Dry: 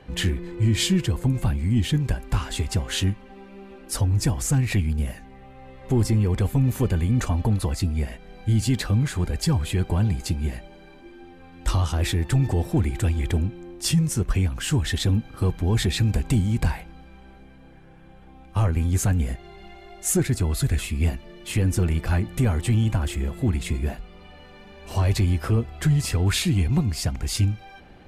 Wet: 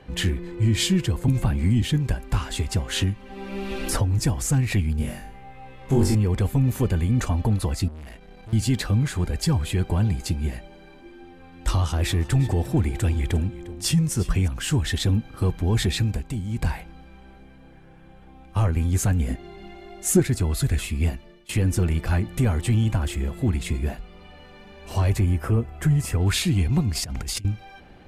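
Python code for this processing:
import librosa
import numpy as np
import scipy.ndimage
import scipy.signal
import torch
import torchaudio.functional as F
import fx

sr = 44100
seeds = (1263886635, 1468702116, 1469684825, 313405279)

y = fx.band_squash(x, sr, depth_pct=100, at=(1.28, 1.82))
y = fx.band_squash(y, sr, depth_pct=100, at=(2.96, 4.19))
y = fx.room_flutter(y, sr, wall_m=3.7, rt60_s=0.42, at=(4.98, 6.15))
y = fx.tube_stage(y, sr, drive_db=37.0, bias=0.55, at=(7.88, 8.53))
y = fx.echo_single(y, sr, ms=353, db=-17.0, at=(11.75, 14.48))
y = fx.peak_eq(y, sr, hz=260.0, db=11.5, octaves=0.77, at=(19.27, 20.2))
y = fx.peak_eq(y, sr, hz=4200.0, db=-11.0, octaves=0.99, at=(25.1, 26.21))
y = fx.over_compress(y, sr, threshold_db=-31.0, ratio=-1.0, at=(26.95, 27.45))
y = fx.edit(y, sr, fx.fade_down_up(start_s=15.94, length_s=0.82, db=-8.5, fade_s=0.34),
    fx.fade_out_to(start_s=20.9, length_s=0.59, curve='qsin', floor_db=-20.0), tone=tone)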